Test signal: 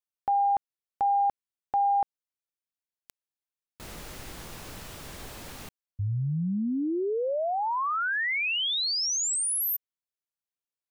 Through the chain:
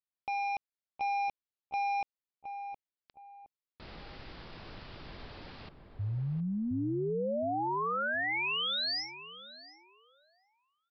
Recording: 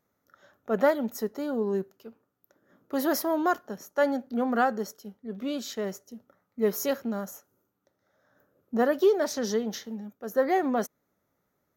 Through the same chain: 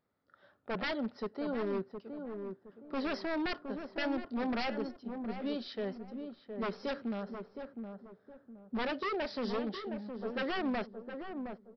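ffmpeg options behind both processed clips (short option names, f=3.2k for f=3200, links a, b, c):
-filter_complex "[0:a]aresample=11025,aeval=exprs='0.0631*(abs(mod(val(0)/0.0631+3,4)-2)-1)':c=same,aresample=44100,asplit=2[a][b];[b]adelay=716,lowpass=f=940:p=1,volume=-6dB,asplit=2[c][d];[d]adelay=716,lowpass=f=940:p=1,volume=0.36,asplit=2[e][f];[f]adelay=716,lowpass=f=940:p=1,volume=0.36,asplit=2[g][h];[h]adelay=716,lowpass=f=940:p=1,volume=0.36[i];[a][c][e][g][i]amix=inputs=5:normalize=0,volume=-5dB"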